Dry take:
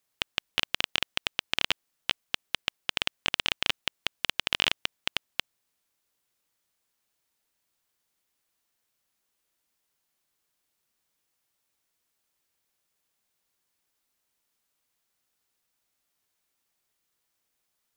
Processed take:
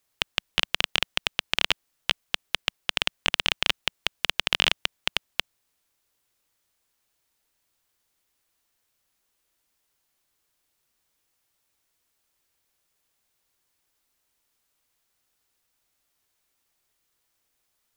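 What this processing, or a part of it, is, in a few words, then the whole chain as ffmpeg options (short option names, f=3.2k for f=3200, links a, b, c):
low shelf boost with a cut just above: -af "lowshelf=f=89:g=5.5,equalizer=f=190:t=o:w=0.55:g=-4,volume=3.5dB"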